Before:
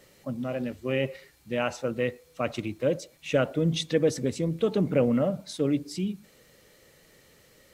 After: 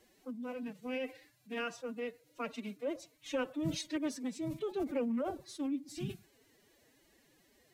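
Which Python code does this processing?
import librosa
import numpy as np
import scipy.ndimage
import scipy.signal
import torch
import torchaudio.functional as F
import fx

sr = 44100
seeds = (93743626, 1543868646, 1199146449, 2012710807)

y = fx.dynamic_eq(x, sr, hz=470.0, q=3.4, threshold_db=-39.0, ratio=4.0, max_db=-5)
y = fx.pitch_keep_formants(y, sr, semitones=11.5)
y = F.gain(torch.from_numpy(y), -9.0).numpy()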